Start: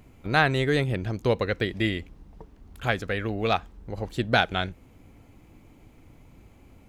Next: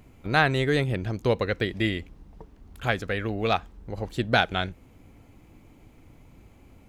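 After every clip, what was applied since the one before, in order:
no processing that can be heard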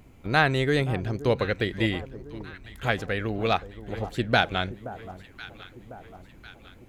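delay that swaps between a low-pass and a high-pass 525 ms, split 1,100 Hz, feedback 70%, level −14 dB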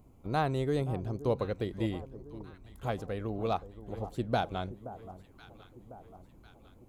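drawn EQ curve 1,100 Hz 0 dB, 1,700 Hz −14 dB, 10,000 Hz −1 dB
level −6 dB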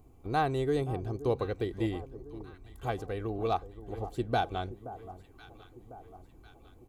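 comb filter 2.6 ms, depth 45%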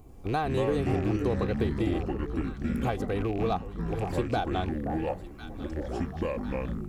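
loose part that buzzes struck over −38 dBFS, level −39 dBFS
downward compressor 5 to 1, threshold −32 dBFS, peak gain reduction 9 dB
delay with pitch and tempo change per echo 92 ms, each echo −6 semitones, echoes 2
level +6.5 dB

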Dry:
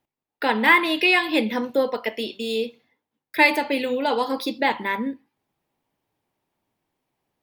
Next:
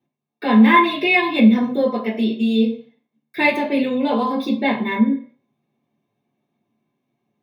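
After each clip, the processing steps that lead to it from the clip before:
convolution reverb RT60 0.50 s, pre-delay 3 ms, DRR −8 dB
level −12.5 dB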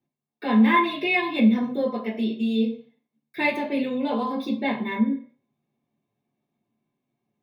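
low-shelf EQ 63 Hz +11 dB
level −6.5 dB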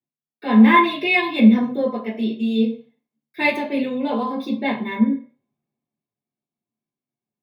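multiband upward and downward expander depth 40%
level +3.5 dB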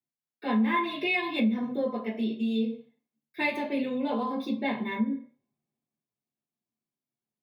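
downward compressor 3 to 1, threshold −20 dBFS, peak gain reduction 10.5 dB
level −5 dB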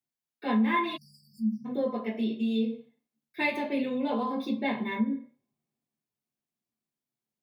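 time-frequency box erased 0:00.97–0:01.66, 230–4,500 Hz

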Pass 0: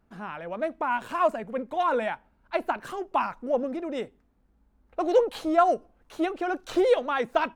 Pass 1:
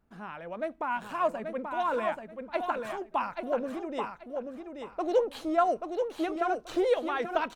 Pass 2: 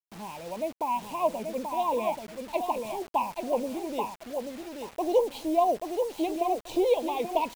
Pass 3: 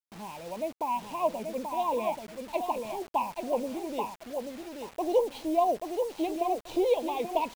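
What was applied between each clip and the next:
repeating echo 833 ms, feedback 22%, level −5.5 dB; level −4.5 dB
elliptic band-stop filter 1,000–2,300 Hz, stop band 50 dB; parametric band 880 Hz +3 dB 0.36 octaves; bit reduction 8 bits; level +2.5 dB
running median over 5 samples; level −1.5 dB

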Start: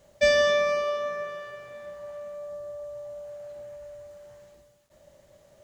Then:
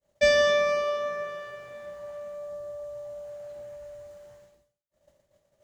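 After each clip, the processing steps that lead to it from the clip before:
downward expander −47 dBFS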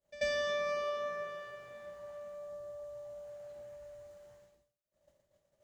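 downward compressor 4 to 1, threshold −24 dBFS, peak gain reduction 7 dB
backwards echo 88 ms −17.5 dB
level −6.5 dB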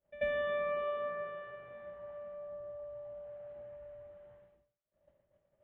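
Butterworth band-reject 5,000 Hz, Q 1.3
high-frequency loss of the air 350 metres
level +1.5 dB

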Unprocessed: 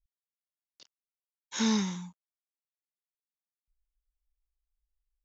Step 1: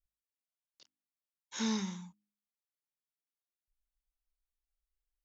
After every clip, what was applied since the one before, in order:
hum removal 51.71 Hz, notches 6
level −6 dB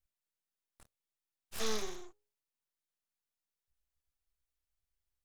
full-wave rectification
level +1.5 dB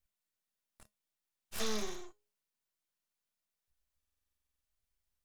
tuned comb filter 210 Hz, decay 0.18 s, harmonics odd, mix 60%
downward compressor, threshold −37 dBFS, peak gain reduction 3 dB
buffer that repeats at 0:03.98, samples 2,048, times 13
level +8.5 dB

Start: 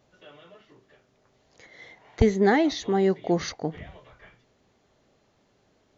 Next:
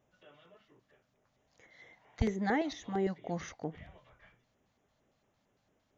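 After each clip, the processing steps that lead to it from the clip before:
auto-filter notch square 4.4 Hz 390–4,400 Hz
level −9 dB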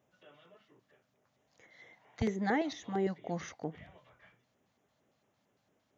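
high-pass filter 100 Hz 12 dB per octave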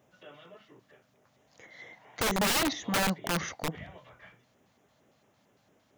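wrap-around overflow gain 30.5 dB
level +8.5 dB

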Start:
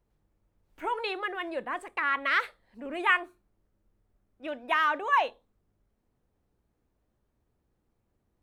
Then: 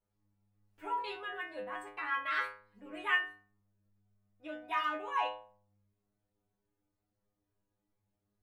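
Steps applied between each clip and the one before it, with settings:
stiff-string resonator 100 Hz, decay 0.57 s, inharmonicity 0.002
level +4.5 dB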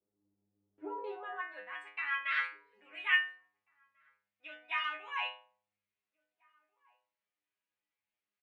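band-pass filter sweep 350 Hz → 2,400 Hz, 0:00.94–0:01.74
slap from a distant wall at 290 metres, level −28 dB
level +7 dB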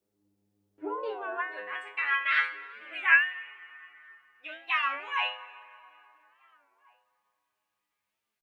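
dense smooth reverb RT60 3.5 s, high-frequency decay 0.55×, DRR 13.5 dB
wow of a warped record 33 1/3 rpm, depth 160 cents
level +7 dB

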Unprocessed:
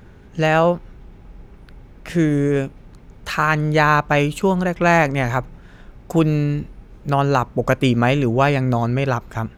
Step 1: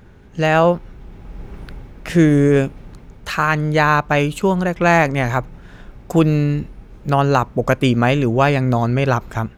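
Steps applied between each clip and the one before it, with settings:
automatic gain control gain up to 12 dB
level −1 dB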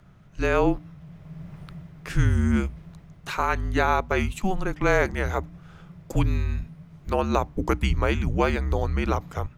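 frequency shifter −200 Hz
mains-hum notches 60/120/180/240/300 Hz
level −7 dB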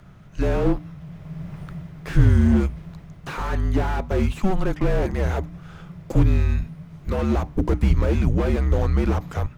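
slew-rate limiting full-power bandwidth 23 Hz
level +6 dB

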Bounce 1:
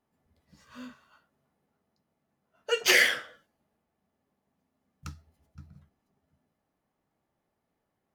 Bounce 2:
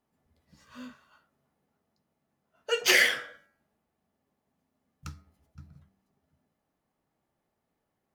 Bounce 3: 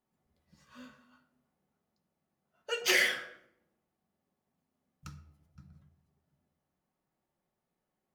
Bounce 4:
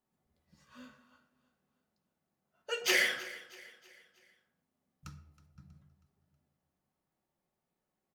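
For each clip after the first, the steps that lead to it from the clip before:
hum removal 96.82 Hz, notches 25
rectangular room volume 2,600 cubic metres, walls furnished, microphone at 0.99 metres; level −5.5 dB
repeating echo 320 ms, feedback 45%, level −18.5 dB; level −1.5 dB

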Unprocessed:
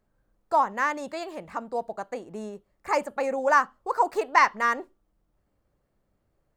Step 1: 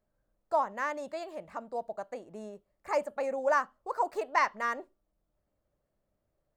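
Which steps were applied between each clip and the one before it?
parametric band 610 Hz +8 dB 0.3 octaves
level −8 dB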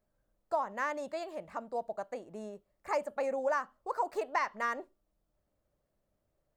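downward compressor, threshold −27 dBFS, peak gain reduction 6.5 dB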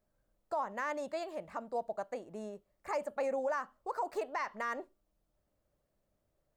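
brickwall limiter −26 dBFS, peak gain reduction 8 dB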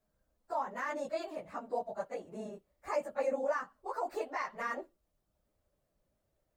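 random phases in long frames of 50 ms

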